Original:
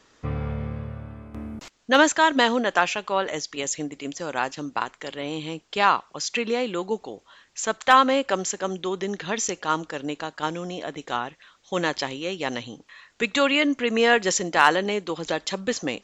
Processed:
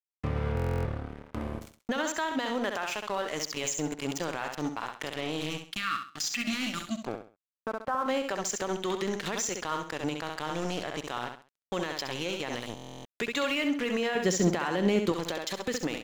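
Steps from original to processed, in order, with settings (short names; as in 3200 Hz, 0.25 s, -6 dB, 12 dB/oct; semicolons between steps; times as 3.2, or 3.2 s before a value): 5.5–7.04 spectral delete 330–1100 Hz; 7.07–8.06 steep low-pass 1500 Hz 48 dB/oct; crossover distortion -36.5 dBFS; compressor 10:1, threshold -30 dBFS, peak gain reduction 19 dB; feedback echo 66 ms, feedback 29%, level -8.5 dB; limiter -27 dBFS, peak gain reduction 13 dB; 14.15–15.12 bell 170 Hz +12 dB 2.4 oct; stuck buffer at 0.55/12.75, samples 1024, times 12; gain +7 dB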